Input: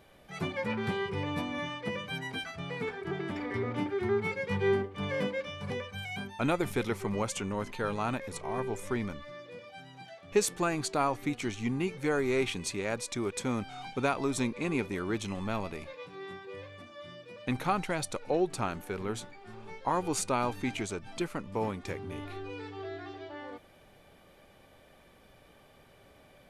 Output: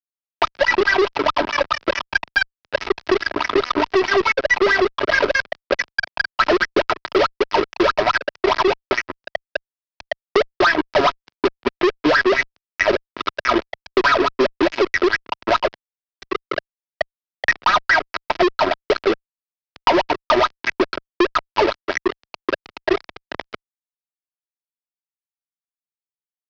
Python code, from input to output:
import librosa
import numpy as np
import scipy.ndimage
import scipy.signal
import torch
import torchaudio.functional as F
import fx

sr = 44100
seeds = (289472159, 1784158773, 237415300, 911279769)

y = fx.low_shelf(x, sr, hz=150.0, db=-2.5)
y = fx.hum_notches(y, sr, base_hz=50, count=4)
y = fx.wah_lfo(y, sr, hz=4.7, low_hz=350.0, high_hz=1900.0, q=12.0)
y = np.sign(y) * np.maximum(np.abs(y) - 10.0 ** (-52.5 / 20.0), 0.0)
y = fx.low_shelf(y, sr, hz=370.0, db=-7.5)
y = y + 0.74 * np.pad(y, (int(3.1 * sr / 1000.0), 0))[:len(y)]
y = fx.fuzz(y, sr, gain_db=51.0, gate_db=-60.0)
y = scipy.signal.sosfilt(scipy.signal.ellip(4, 1.0, 70, 5200.0, 'lowpass', fs=sr, output='sos'), y)
y = fx.band_squash(y, sr, depth_pct=70)
y = y * librosa.db_to_amplitude(3.0)